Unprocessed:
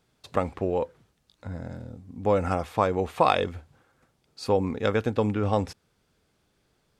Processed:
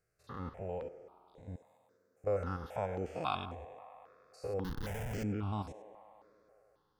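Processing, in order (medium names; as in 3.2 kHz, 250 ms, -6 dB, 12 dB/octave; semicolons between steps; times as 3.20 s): spectrogram pixelated in time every 100 ms; 1.56–2.24 s: differentiator; 4.64–5.24 s: Schmitt trigger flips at -29.5 dBFS; feedback echo behind a band-pass 100 ms, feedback 80%, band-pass 880 Hz, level -13 dB; stepped phaser 3.7 Hz 920–4800 Hz; trim -8 dB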